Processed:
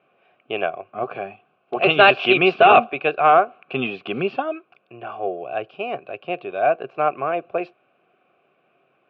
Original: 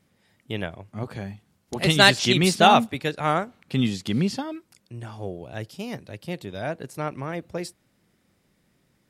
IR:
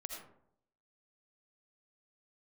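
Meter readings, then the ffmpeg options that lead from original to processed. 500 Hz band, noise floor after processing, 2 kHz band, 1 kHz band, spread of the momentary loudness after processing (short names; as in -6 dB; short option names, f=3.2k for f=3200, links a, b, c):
+7.5 dB, -66 dBFS, +4.5 dB, +6.5 dB, 18 LU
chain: -filter_complex "[0:a]asplit=3[a][b][c];[a]bandpass=f=730:t=q:w=8,volume=0dB[d];[b]bandpass=f=1.09k:t=q:w=8,volume=-6dB[e];[c]bandpass=f=2.44k:t=q:w=8,volume=-9dB[f];[d][e][f]amix=inputs=3:normalize=0,apsyclip=25dB,highpass=110,equalizer=f=140:t=q:w=4:g=5,equalizer=f=200:t=q:w=4:g=-3,equalizer=f=390:t=q:w=4:g=9,equalizer=f=850:t=q:w=4:g=-4,equalizer=f=1.5k:t=q:w=4:g=8,equalizer=f=2.7k:t=q:w=4:g=5,lowpass=f=3.1k:w=0.5412,lowpass=f=3.1k:w=1.3066,volume=-6.5dB"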